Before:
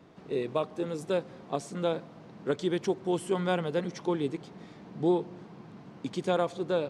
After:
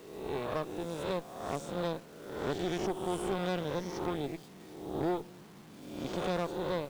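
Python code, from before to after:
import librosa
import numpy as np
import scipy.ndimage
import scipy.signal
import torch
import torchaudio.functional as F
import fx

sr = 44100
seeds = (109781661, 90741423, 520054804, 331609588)

y = fx.spec_swells(x, sr, rise_s=1.09)
y = fx.cheby_harmonics(y, sr, harmonics=(6,), levels_db=(-15,), full_scale_db=-12.0)
y = fx.quant_dither(y, sr, seeds[0], bits=8, dither='none')
y = y * 10.0 ** (-8.5 / 20.0)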